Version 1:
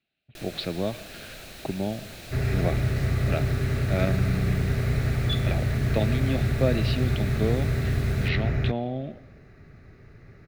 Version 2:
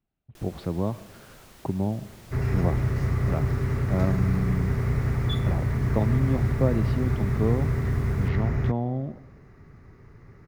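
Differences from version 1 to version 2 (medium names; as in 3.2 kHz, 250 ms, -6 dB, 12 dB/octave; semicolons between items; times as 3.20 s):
speech: remove frequency weighting D; first sound -6.5 dB; master: add graphic EQ with 31 bands 630 Hz -6 dB, 1 kHz +10 dB, 1.6 kHz -4 dB, 2.5 kHz -7 dB, 4 kHz -8 dB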